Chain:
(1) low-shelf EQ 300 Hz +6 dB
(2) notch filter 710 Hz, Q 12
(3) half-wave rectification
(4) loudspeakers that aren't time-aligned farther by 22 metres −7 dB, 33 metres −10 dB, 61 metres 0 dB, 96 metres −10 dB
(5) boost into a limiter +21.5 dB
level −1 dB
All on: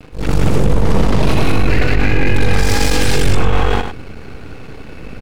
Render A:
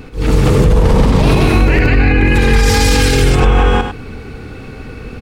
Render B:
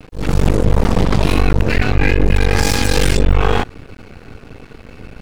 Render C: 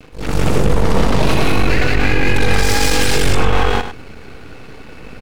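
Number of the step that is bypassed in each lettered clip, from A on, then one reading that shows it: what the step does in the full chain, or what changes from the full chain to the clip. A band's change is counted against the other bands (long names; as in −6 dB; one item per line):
3, distortion level 0 dB
4, change in momentary loudness spread −17 LU
1, 125 Hz band −4.5 dB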